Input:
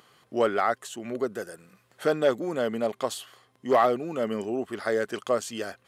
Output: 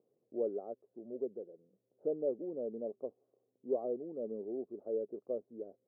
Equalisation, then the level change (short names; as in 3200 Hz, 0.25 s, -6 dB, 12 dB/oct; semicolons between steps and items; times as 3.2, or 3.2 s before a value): steep low-pass 500 Hz 36 dB/oct; differentiator; low shelf 120 Hz -6.5 dB; +17.0 dB